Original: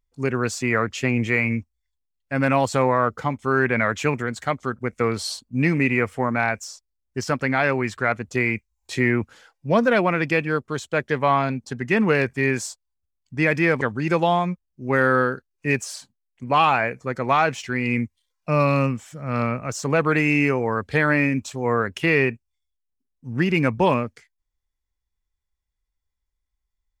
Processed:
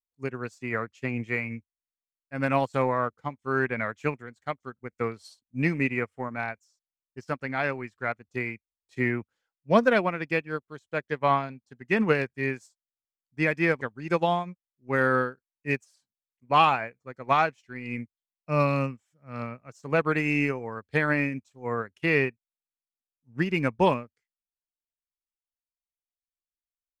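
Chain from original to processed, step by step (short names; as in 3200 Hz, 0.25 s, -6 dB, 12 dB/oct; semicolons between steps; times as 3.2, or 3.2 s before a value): upward expander 2.5:1, over -35 dBFS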